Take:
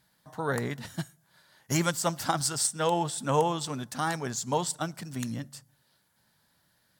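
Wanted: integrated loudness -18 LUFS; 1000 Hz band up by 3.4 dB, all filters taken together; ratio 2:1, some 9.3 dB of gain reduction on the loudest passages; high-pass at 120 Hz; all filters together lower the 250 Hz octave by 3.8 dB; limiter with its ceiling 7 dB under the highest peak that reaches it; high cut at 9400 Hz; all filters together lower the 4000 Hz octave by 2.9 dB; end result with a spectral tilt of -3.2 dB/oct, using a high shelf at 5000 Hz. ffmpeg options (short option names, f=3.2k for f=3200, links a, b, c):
-af "highpass=120,lowpass=9.4k,equalizer=f=250:t=o:g=-5.5,equalizer=f=1k:t=o:g=4.5,equalizer=f=4k:t=o:g=-8.5,highshelf=f=5k:g=8,acompressor=threshold=-37dB:ratio=2,volume=20dB,alimiter=limit=-5dB:level=0:latency=1"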